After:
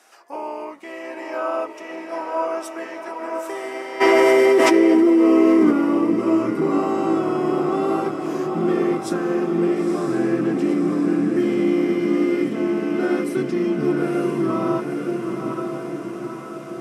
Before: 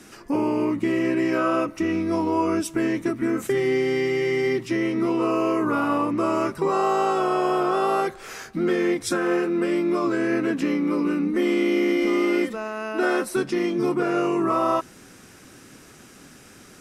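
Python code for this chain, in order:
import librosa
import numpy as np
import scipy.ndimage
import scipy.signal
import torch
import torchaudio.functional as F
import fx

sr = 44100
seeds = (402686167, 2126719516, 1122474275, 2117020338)

y = fx.filter_sweep_highpass(x, sr, from_hz=710.0, to_hz=130.0, start_s=3.99, end_s=6.46, q=2.6)
y = fx.echo_diffused(y, sr, ms=942, feedback_pct=65, wet_db=-4.5)
y = fx.dynamic_eq(y, sr, hz=260.0, q=0.72, threshold_db=-31.0, ratio=4.0, max_db=7)
y = fx.env_flatten(y, sr, amount_pct=100, at=(4.0, 5.7), fade=0.02)
y = F.gain(torch.from_numpy(y), -6.5).numpy()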